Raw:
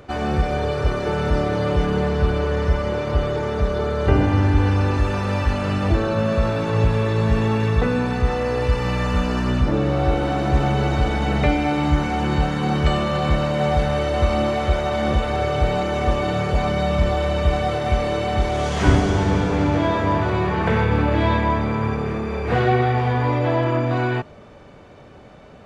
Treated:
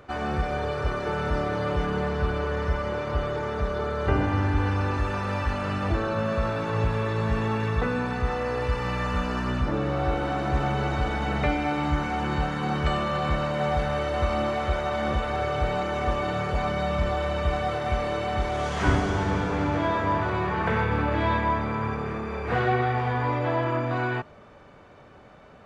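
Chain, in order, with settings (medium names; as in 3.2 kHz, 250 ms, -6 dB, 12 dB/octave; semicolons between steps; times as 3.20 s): peaking EQ 1.3 kHz +6 dB 1.6 oct; trim -7.5 dB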